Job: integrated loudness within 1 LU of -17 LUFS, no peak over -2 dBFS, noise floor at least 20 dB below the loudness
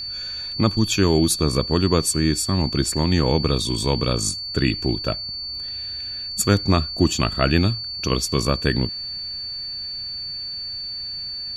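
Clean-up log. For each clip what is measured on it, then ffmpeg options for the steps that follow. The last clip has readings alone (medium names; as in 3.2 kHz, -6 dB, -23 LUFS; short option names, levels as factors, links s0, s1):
steady tone 4.5 kHz; tone level -28 dBFS; loudness -22.0 LUFS; peak level -2.5 dBFS; loudness target -17.0 LUFS
-> -af "bandreject=f=4500:w=30"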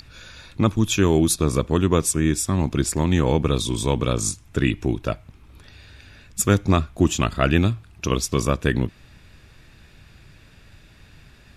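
steady tone not found; loudness -21.5 LUFS; peak level -2.5 dBFS; loudness target -17.0 LUFS
-> -af "volume=1.68,alimiter=limit=0.794:level=0:latency=1"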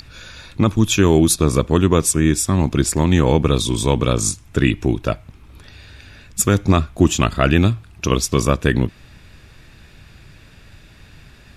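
loudness -17.5 LUFS; peak level -2.0 dBFS; noise floor -46 dBFS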